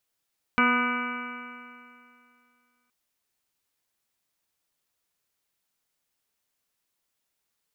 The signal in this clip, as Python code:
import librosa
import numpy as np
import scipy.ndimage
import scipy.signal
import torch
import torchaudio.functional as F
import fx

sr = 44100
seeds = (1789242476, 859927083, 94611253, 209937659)

y = fx.additive_stiff(sr, length_s=2.32, hz=243.0, level_db=-23.5, upper_db=(-9, -12.5, -4.5, 1, -0.5, -16.5, -10.0, 0.0, -18.5, -13), decay_s=2.46, stiffness=0.0014)